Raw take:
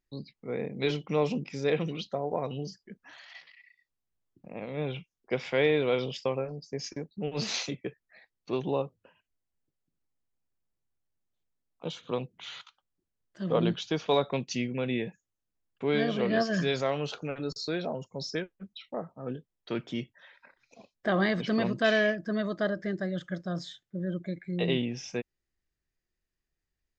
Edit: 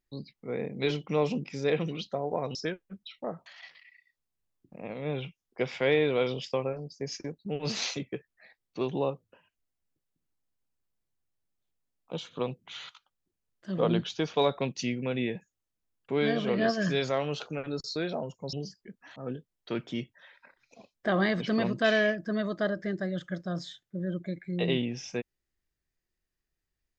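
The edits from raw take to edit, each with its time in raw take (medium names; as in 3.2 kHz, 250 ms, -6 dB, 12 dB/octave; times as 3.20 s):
2.55–3.18 s: swap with 18.25–19.16 s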